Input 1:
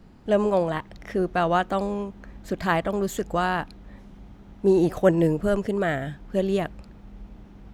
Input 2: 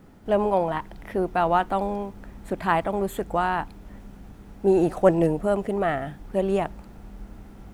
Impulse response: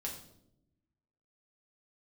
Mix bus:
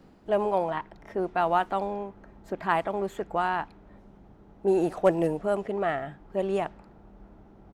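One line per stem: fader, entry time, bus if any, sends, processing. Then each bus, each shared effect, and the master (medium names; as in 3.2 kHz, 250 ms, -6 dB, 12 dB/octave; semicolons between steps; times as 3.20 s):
-1.0 dB, 0.00 s, no send, compression, threshold -31 dBFS, peak gain reduction 17.5 dB; auto duck -11 dB, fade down 0.55 s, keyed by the second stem
-2.5 dB, 3.9 ms, polarity flipped, no send, level-controlled noise filter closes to 800 Hz, open at -17 dBFS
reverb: none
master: bass shelf 160 Hz -11.5 dB; hard clipper -10 dBFS, distortion -35 dB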